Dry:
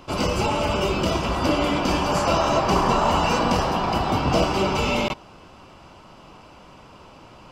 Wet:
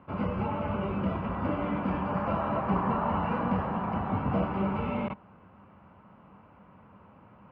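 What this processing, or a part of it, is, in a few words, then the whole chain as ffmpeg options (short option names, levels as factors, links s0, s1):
bass cabinet: -af "highpass=64,equalizer=f=95:t=q:w=4:g=6,equalizer=f=200:t=q:w=4:g=9,equalizer=f=350:t=q:w=4:g=-6,equalizer=f=680:t=q:w=4:g=-3,lowpass=f=2000:w=0.5412,lowpass=f=2000:w=1.3066,volume=0.376"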